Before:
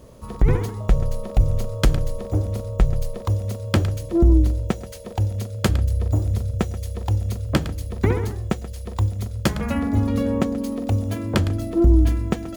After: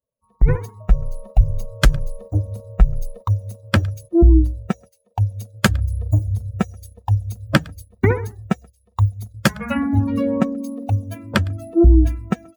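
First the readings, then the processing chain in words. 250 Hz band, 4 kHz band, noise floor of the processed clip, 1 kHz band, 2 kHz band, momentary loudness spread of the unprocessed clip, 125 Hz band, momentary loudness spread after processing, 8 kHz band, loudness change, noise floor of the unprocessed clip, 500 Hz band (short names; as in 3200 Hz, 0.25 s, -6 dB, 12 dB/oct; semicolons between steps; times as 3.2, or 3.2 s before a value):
+2.5 dB, +3.5 dB, -62 dBFS, +3.5 dB, +7.5 dB, 9 LU, +1.5 dB, 11 LU, +2.0 dB, +2.0 dB, -35 dBFS, +1.5 dB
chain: per-bin expansion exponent 2; gate -44 dBFS, range -15 dB; dynamic EQ 1600 Hz, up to +6 dB, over -52 dBFS, Q 2.5; in parallel at +1 dB: vocal rider 2 s; on the sum: gain -1 dB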